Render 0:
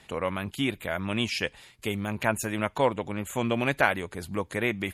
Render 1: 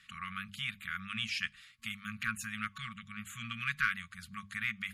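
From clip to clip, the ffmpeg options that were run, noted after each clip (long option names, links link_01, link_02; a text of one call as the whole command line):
ffmpeg -i in.wav -filter_complex "[0:a]asplit=2[link_01][link_02];[link_02]highpass=frequency=720:poles=1,volume=9dB,asoftclip=type=tanh:threshold=-5dB[link_03];[link_01][link_03]amix=inputs=2:normalize=0,lowpass=frequency=3900:poles=1,volume=-6dB,afftfilt=real='re*(1-between(b*sr/4096,230,1100))':imag='im*(1-between(b*sr/4096,230,1100))':win_size=4096:overlap=0.75,bandreject=frequency=50:width_type=h:width=6,bandreject=frequency=100:width_type=h:width=6,bandreject=frequency=150:width_type=h:width=6,bandreject=frequency=200:width_type=h:width=6,volume=-8dB" out.wav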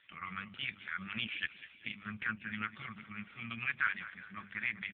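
ffmpeg -i in.wav -af "aecho=1:1:196|392|588|784|980:0.188|0.0979|0.0509|0.0265|0.0138,volume=1dB" -ar 8000 -c:a libopencore_amrnb -b:a 5150 out.amr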